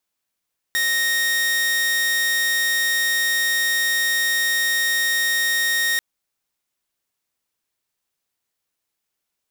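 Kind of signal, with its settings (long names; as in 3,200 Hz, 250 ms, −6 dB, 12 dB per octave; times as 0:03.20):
tone saw 1,860 Hz −15.5 dBFS 5.24 s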